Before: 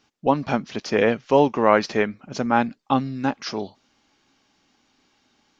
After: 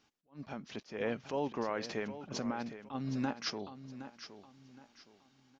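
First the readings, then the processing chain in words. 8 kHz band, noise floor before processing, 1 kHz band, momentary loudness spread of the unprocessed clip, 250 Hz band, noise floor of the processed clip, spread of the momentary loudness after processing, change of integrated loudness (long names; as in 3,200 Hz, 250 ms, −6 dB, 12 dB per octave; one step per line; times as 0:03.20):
can't be measured, −66 dBFS, −19.5 dB, 11 LU, −14.5 dB, −72 dBFS, 21 LU, −17.0 dB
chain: downward compressor, threshold −24 dBFS, peak gain reduction 13.5 dB
brickwall limiter −20 dBFS, peak gain reduction 8.5 dB
sample-and-hold tremolo 2 Hz
on a send: repeating echo 767 ms, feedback 31%, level −12.5 dB
on the sum: level that may rise only so fast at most 260 dB per second
level −3 dB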